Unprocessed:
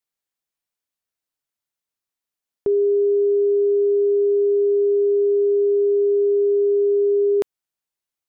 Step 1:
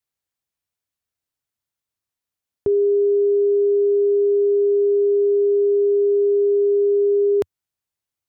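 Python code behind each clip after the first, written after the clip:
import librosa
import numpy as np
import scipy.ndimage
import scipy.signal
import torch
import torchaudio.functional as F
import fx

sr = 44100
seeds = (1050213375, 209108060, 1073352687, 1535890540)

y = fx.peak_eq(x, sr, hz=89.0, db=11.5, octaves=1.3)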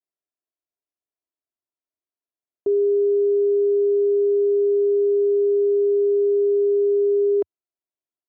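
y = fx.bandpass_q(x, sr, hz=470.0, q=1.2)
y = y + 0.78 * np.pad(y, (int(3.0 * sr / 1000.0), 0))[:len(y)]
y = y * librosa.db_to_amplitude(-4.0)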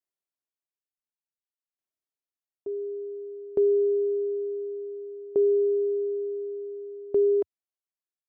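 y = fx.tremolo_decay(x, sr, direction='decaying', hz=0.56, depth_db=22)
y = y * librosa.db_to_amplitude(-1.0)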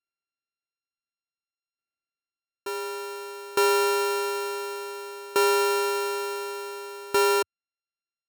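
y = np.r_[np.sort(x[:len(x) // 32 * 32].reshape(-1, 32), axis=1).ravel(), x[len(x) // 32 * 32:]]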